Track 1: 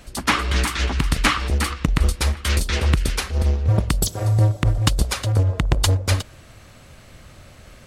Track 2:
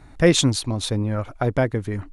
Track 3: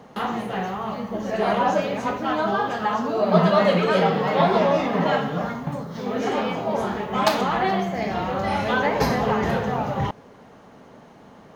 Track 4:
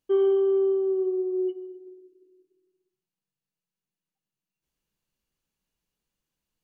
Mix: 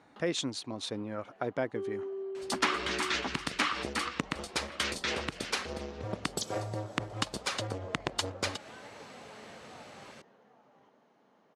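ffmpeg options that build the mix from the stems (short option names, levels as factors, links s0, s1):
-filter_complex "[0:a]acompressor=threshold=0.0794:ratio=6,adelay=2350,volume=0.794[s0];[1:a]alimiter=limit=0.299:level=0:latency=1:release=287,volume=0.355,asplit=2[s1][s2];[2:a]acompressor=threshold=0.0282:ratio=5,volume=0.126,asplit=3[s3][s4][s5];[s3]atrim=end=2.23,asetpts=PTS-STARTPTS,afade=t=out:st=2.226:d=0.004:c=hsin[s6];[s4]atrim=start=2.23:end=4.18,asetpts=PTS-STARTPTS,volume=0[s7];[s5]atrim=start=4.18,asetpts=PTS-STARTPTS,afade=t=in:d=0.004:c=hsin[s8];[s6][s7][s8]concat=n=3:v=0:a=1,asplit=2[s9][s10];[s10]volume=0.251[s11];[3:a]adelay=1650,volume=0.168[s12];[s2]apad=whole_len=509461[s13];[s9][s13]sidechaincompress=threshold=0.00501:ratio=3:attack=16:release=897[s14];[s11]aecho=0:1:783:1[s15];[s0][s1][s14][s12][s15]amix=inputs=5:normalize=0,highpass=240,lowpass=7000"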